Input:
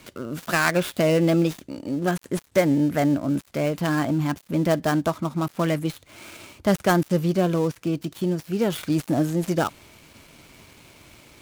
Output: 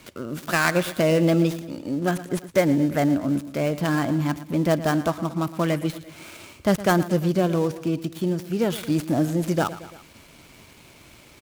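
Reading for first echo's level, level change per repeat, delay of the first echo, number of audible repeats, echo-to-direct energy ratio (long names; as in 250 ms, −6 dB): −15.5 dB, −4.5 dB, 114 ms, 3, −14.0 dB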